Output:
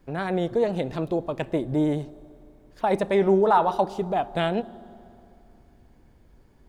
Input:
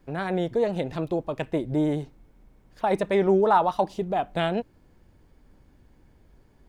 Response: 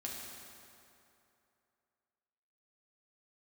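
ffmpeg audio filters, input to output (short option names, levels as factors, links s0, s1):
-filter_complex "[0:a]asettb=1/sr,asplit=3[s0][s1][s2];[s0]atrim=end=3.144[s3];[s1]atrim=start=3.14:end=3.78,asetpts=PTS-STARTPTS,afade=t=in:d=0.004:c=qsin,afade=t=out:st=0.636:d=0.004:c=qsin,bandreject=f=118.8:t=h:w=4,bandreject=f=237.6:t=h:w=4,bandreject=f=356.4:t=h:w=4,bandreject=f=475.2:t=h:w=4,bandreject=f=594:t=h:w=4,bandreject=f=712.8:t=h:w=4,bandreject=f=831.6:t=h:w=4,bandreject=f=950.4:t=h:w=4,bandreject=f=1069.2:t=h:w=4,bandreject=f=1188:t=h:w=4,bandreject=f=1306.8:t=h:w=4,bandreject=f=1425.6:t=h:w=4,bandreject=f=1544.4:t=h:w=4,bandreject=f=1663.2:t=h:w=4,bandreject=f=1782:t=h:w=4,bandreject=f=1900.8:t=h:w=4,bandreject=f=2019.6:t=h:w=4,bandreject=f=2138.4:t=h:w=4,bandreject=f=2257.2:t=h:w=4,bandreject=f=2376:t=h:w=4,bandreject=f=2494.8:t=h:w=4,bandreject=f=2613.6:t=h:w=4,bandreject=f=2732.4:t=h:w=4,bandreject=f=2851.2:t=h:w=4,bandreject=f=2970:t=h:w=4,bandreject=f=3088.8:t=h:w=4,bandreject=f=3207.6:t=h:w=4,bandreject=f=3326.4:t=h:w=4,bandreject=f=3445.2:t=h:w=4,bandreject=f=3564:t=h:w=4,bandreject=f=3682.8:t=h:w=4,bandreject=f=3801.6:t=h:w=4,bandreject=f=3920.4:t=h:w=4,bandreject=f=4039.2:t=h:w=4,bandreject=f=4158:t=h:w=4,bandreject=f=4276.8:t=h:w=4,bandreject=f=4395.6:t=h:w=4,bandreject=f=4514.4:t=h:w=4[s4];[s2]atrim=start=3.776[s5];[s3][s4]acrossfade=d=0.004:c1=hsin:c2=qsin[s6];[s6][s5]acrossfade=d=0.004:c1=qsin:c2=hsin,asplit=2[s7][s8];[s8]equalizer=f=2300:t=o:w=0.65:g=-14.5[s9];[1:a]atrim=start_sample=2205[s10];[s9][s10]afir=irnorm=-1:irlink=0,volume=0.211[s11];[s7][s11]amix=inputs=2:normalize=0"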